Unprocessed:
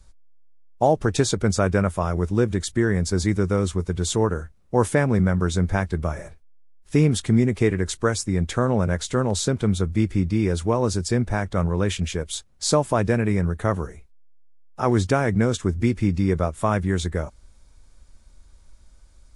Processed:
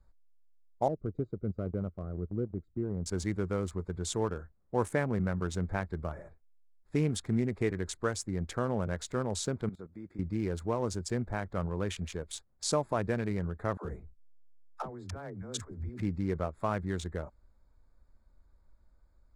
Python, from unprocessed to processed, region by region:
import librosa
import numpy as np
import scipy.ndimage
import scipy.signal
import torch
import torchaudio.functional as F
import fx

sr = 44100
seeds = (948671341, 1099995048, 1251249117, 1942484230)

y = fx.chain(x, sr, fx.moving_average(points=51),
    fx.transient(attack_db=-1, sustain_db=-9), at=(0.88, 3.06))
y = fx.chain(y, sr, fx.highpass(hz=170.0, slope=12),
    fx.level_steps(step_db=16), at=(9.69, 10.19))
y = fx.chain(y, sr, fx.over_compress(threshold_db=-29.0, ratio=-1.0),
    fx.dispersion(late='lows', ms=80.0, hz=360.0), at=(13.77, 16.02))
y = fx.wiener(y, sr, points=15)
y = fx.low_shelf(y, sr, hz=320.0, db=-4.0)
y = y * 10.0 ** (-8.5 / 20.0)